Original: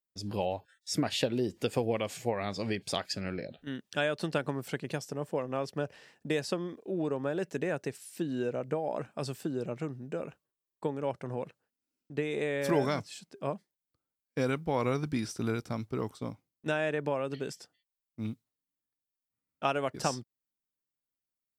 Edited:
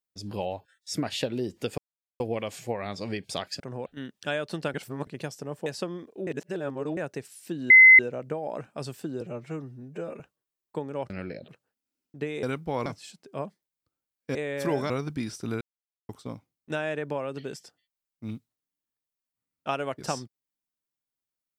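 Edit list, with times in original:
0:01.78: splice in silence 0.42 s
0:03.18–0:03.56: swap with 0:11.18–0:11.44
0:04.44–0:04.77: reverse
0:05.36–0:06.36: remove
0:06.97–0:07.67: reverse
0:08.40: insert tone 2,050 Hz −9 dBFS 0.29 s
0:09.62–0:10.28: time-stretch 1.5×
0:12.39–0:12.94: swap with 0:14.43–0:14.86
0:15.57–0:16.05: silence

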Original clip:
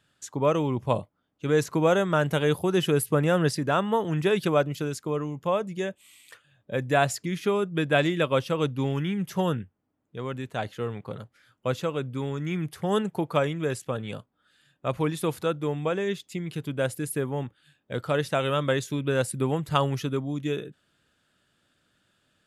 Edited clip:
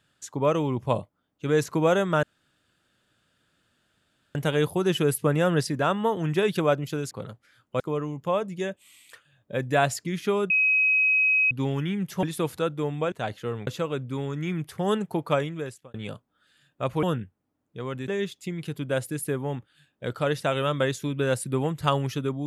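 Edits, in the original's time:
0:02.23: splice in room tone 2.12 s
0:07.69–0:08.70: beep over 2,540 Hz −18 dBFS
0:09.42–0:10.47: swap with 0:15.07–0:15.96
0:11.02–0:11.71: move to 0:04.99
0:13.40–0:13.98: fade out

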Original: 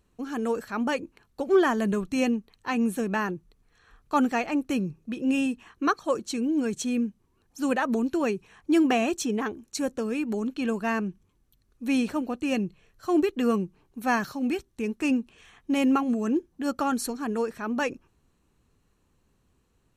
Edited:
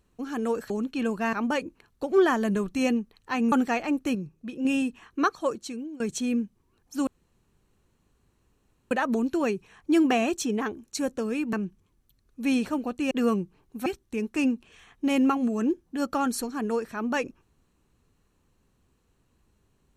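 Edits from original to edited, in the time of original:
0:02.89–0:04.16: remove
0:04.79–0:05.29: clip gain −4 dB
0:06.02–0:06.64: fade out, to −22 dB
0:07.71: splice in room tone 1.84 s
0:10.33–0:10.96: move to 0:00.70
0:12.54–0:13.33: remove
0:14.08–0:14.52: remove

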